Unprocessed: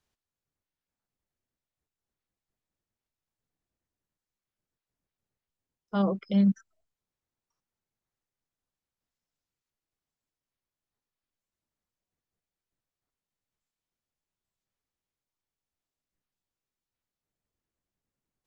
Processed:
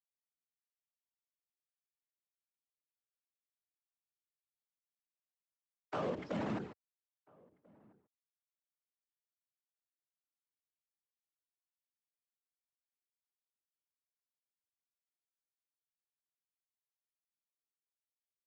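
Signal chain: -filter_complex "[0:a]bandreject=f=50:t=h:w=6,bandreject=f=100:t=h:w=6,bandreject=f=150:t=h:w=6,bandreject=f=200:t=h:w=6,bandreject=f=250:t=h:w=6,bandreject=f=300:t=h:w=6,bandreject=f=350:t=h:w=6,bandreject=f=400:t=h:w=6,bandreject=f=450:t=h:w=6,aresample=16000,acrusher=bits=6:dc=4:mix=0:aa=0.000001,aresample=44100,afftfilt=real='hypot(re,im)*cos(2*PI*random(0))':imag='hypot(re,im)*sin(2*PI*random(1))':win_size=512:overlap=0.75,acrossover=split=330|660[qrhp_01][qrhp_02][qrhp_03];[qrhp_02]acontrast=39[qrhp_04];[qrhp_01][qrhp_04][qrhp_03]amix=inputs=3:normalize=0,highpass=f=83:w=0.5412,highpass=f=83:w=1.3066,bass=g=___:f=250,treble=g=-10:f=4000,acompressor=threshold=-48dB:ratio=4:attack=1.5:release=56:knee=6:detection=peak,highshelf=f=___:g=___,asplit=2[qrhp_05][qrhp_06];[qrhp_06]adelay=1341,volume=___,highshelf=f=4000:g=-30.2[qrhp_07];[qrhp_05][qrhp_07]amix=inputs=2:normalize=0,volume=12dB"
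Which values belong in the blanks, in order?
-7, 4400, -10, -27dB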